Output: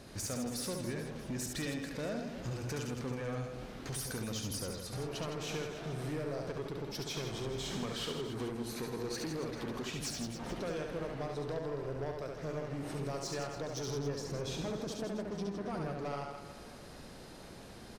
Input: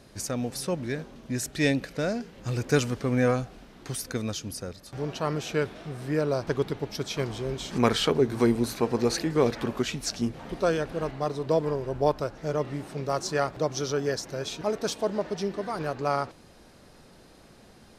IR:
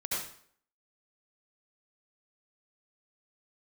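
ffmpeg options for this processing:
-filter_complex "[0:a]asettb=1/sr,asplit=3[a][b][c];[a]atrim=end=13.874[d];[b]atrim=start=13.87:end=15.92,asetpts=PTS-STARTPTS,afade=t=in:d=0.004:c=qsin,afade=t=out:st=2.046:d=0.004:c=qsin,lowshelf=f=440:g=10.5[e];[c]atrim=start=15.916[f];[d][e]acrossfade=d=0.004:c1=hsin:c2=qsin[g];[g][f]acrossfade=d=0.004:c1=qsin:c2=hsin,acompressor=threshold=-35dB:ratio=6,asoftclip=type=tanh:threshold=-35dB,aecho=1:1:70|161|279.3|433.1|633:0.631|0.398|0.251|0.158|0.1,volume=1dB"

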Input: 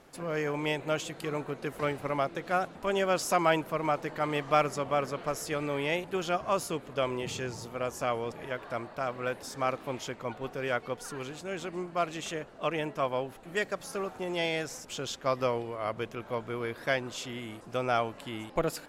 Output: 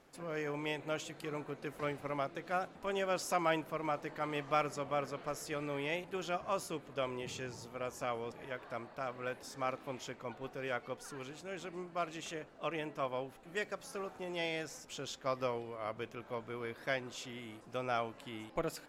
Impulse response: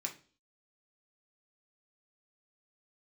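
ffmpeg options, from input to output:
-filter_complex "[0:a]asplit=2[a][b];[1:a]atrim=start_sample=2205,lowpass=7.6k[c];[b][c]afir=irnorm=-1:irlink=0,volume=-13.5dB[d];[a][d]amix=inputs=2:normalize=0,volume=-8dB"

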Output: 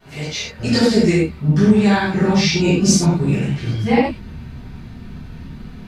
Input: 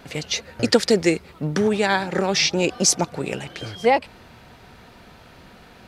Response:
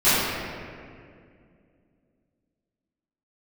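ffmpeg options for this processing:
-filter_complex "[0:a]asubboost=boost=8:cutoff=220[a];[1:a]atrim=start_sample=2205,atrim=end_sample=6174[b];[a][b]afir=irnorm=-1:irlink=0,volume=-17.5dB"

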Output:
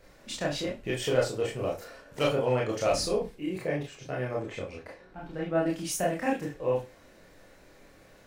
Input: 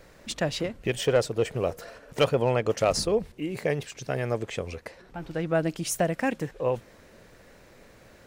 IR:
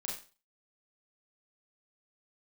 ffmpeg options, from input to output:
-filter_complex "[0:a]asettb=1/sr,asplit=3[a][b][c];[a]atrim=end=3.584[d];[b]atrim=start=3.58:end=5.66,asetpts=PTS-STARTPTS,afade=t=in:d=0.004:c=qsin,afade=t=out:st=2.076:d=0.004:c=qsin,highshelf=f=3.8k:g=-9[e];[c]atrim=start=5.656[f];[d][e]acrossfade=d=0.004:c1=hsin:c2=qsin[g];[g][f]acrossfade=d=0.004:c1=qsin:c2=hsin[h];[1:a]atrim=start_sample=2205,asetrate=61740,aresample=44100[i];[h][i]afir=irnorm=-1:irlink=0"

